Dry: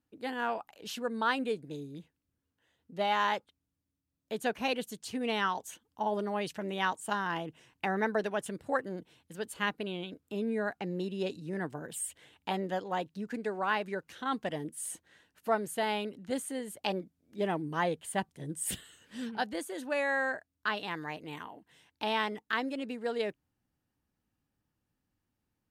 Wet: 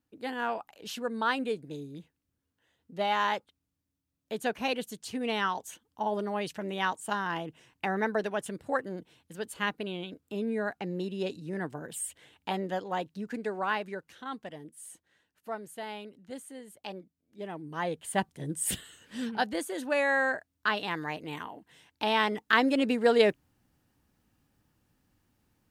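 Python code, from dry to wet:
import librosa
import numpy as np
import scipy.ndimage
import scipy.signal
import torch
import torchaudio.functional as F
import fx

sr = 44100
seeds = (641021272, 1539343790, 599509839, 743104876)

y = fx.gain(x, sr, db=fx.line((13.63, 1.0), (14.55, -8.0), (17.5, -8.0), (18.19, 4.0), (22.11, 4.0), (22.8, 11.0)))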